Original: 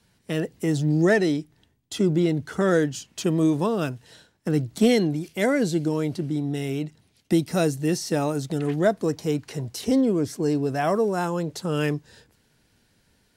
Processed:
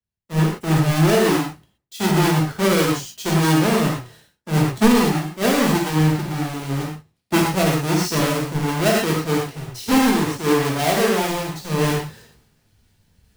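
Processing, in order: square wave that keeps the level; reverse; upward compressor, threshold -28 dBFS; reverse; gated-style reverb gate 150 ms flat, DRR -3 dB; loudness maximiser +5 dB; three bands expanded up and down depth 100%; trim -7.5 dB

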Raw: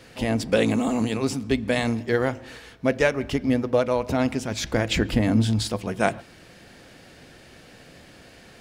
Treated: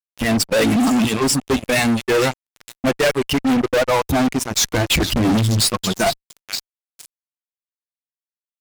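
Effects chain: expander on every frequency bin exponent 2; treble shelf 5.3 kHz +6 dB; repeats whose band climbs or falls 461 ms, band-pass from 3.3 kHz, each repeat 0.7 oct, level -8.5 dB; fuzz box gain 37 dB, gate -43 dBFS; transformer saturation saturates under 110 Hz

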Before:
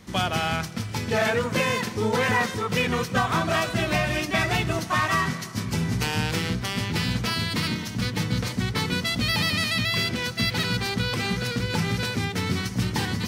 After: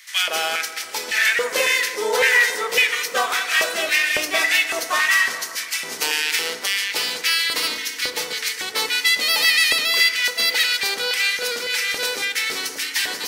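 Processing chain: tilt EQ +3.5 dB/octave; LFO high-pass square 1.8 Hz 460–1900 Hz; FDN reverb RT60 2 s, low-frequency decay 1.2×, high-frequency decay 0.3×, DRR 8.5 dB

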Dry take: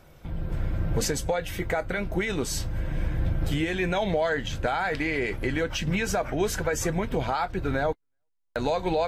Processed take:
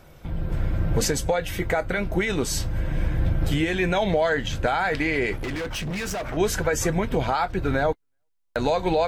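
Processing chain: 5.36–6.37 s: hard clipper -30.5 dBFS, distortion -14 dB; trim +3.5 dB

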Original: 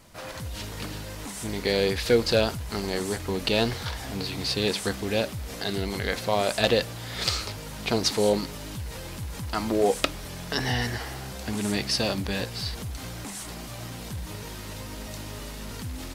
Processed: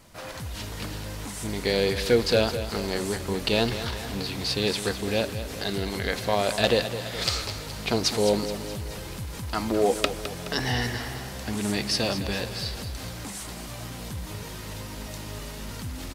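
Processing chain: feedback delay 211 ms, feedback 55%, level -11.5 dB

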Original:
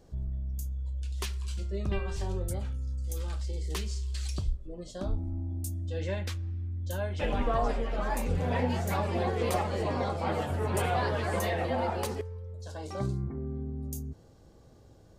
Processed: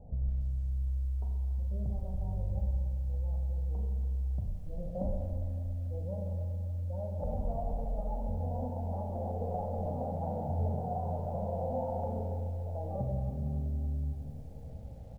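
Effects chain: steep low-pass 930 Hz 48 dB/octave; tilt shelf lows +4.5 dB, about 710 Hz; comb 1.4 ms, depth 83%; compression 8:1, threshold -33 dBFS, peak gain reduction 18.5 dB; feedback delay 130 ms, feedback 46%, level -12 dB; Schroeder reverb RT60 1.5 s, combs from 32 ms, DRR 1 dB; bit-crushed delay 283 ms, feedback 55%, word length 10-bit, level -12 dB

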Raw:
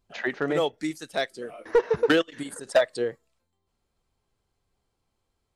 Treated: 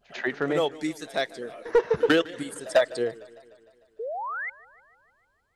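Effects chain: pre-echo 96 ms -21.5 dB; painted sound rise, 3.99–4.50 s, 420–2200 Hz -32 dBFS; modulated delay 151 ms, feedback 63%, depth 134 cents, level -21 dB

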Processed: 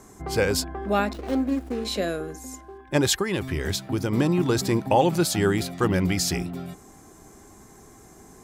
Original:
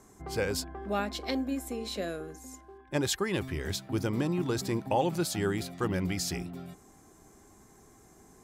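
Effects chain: 1.13–1.85 s: median filter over 41 samples; 3.20–4.12 s: compression 4:1, threshold -30 dBFS, peak gain reduction 5 dB; trim +8 dB

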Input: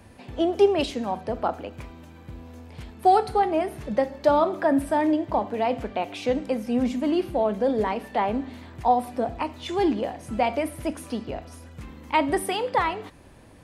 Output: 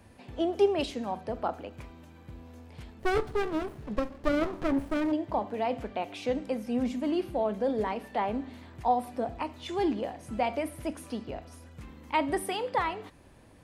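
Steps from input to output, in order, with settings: 2.99–5.12 s: sliding maximum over 33 samples; trim -5.5 dB

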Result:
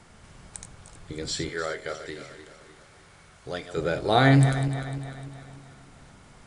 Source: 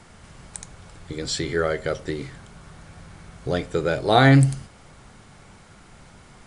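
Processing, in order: backward echo that repeats 151 ms, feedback 68%, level -10.5 dB; 1.49–3.77 s: bass shelf 470 Hz -11 dB; trim -4 dB

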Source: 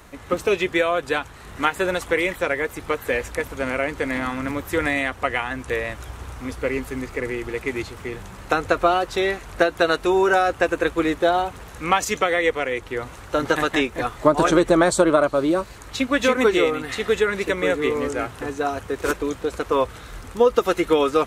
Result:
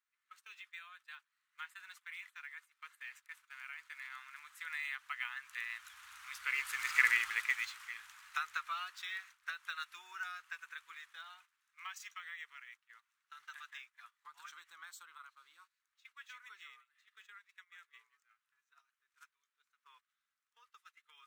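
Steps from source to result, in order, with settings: Doppler pass-by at 7.03 s, 9 m/s, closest 1.7 m; gate -56 dBFS, range -14 dB; inverse Chebyshev high-pass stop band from 640 Hz, stop band 40 dB; decimation joined by straight lines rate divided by 2×; trim +6 dB

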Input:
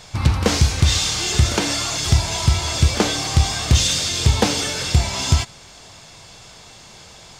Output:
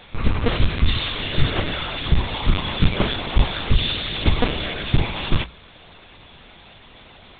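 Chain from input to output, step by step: LPC vocoder at 8 kHz pitch kept; peaking EQ 800 Hz -3 dB 0.77 oct; hum notches 60/120/180 Hz

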